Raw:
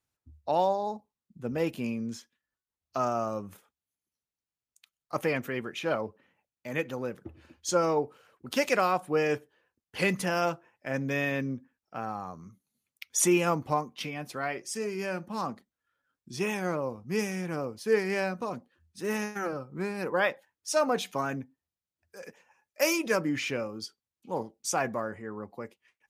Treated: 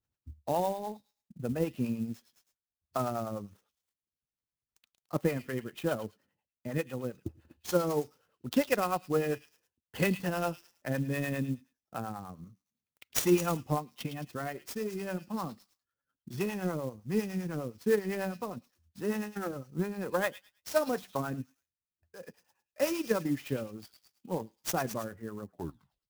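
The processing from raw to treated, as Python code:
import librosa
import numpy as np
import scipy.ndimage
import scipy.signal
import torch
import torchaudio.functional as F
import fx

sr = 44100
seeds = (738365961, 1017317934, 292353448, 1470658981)

p1 = fx.tape_stop_end(x, sr, length_s=0.63)
p2 = fx.low_shelf(p1, sr, hz=320.0, db=10.0)
p3 = fx.notch(p2, sr, hz=2300.0, q=9.8)
p4 = fx.transient(p3, sr, attack_db=5, sustain_db=-6)
p5 = fx.harmonic_tremolo(p4, sr, hz=9.9, depth_pct=70, crossover_hz=500.0)
p6 = p5 + fx.echo_stepped(p5, sr, ms=108, hz=3800.0, octaves=0.7, feedback_pct=70, wet_db=-6.0, dry=0)
p7 = fx.clock_jitter(p6, sr, seeds[0], jitter_ms=0.028)
y = p7 * librosa.db_to_amplitude(-4.0)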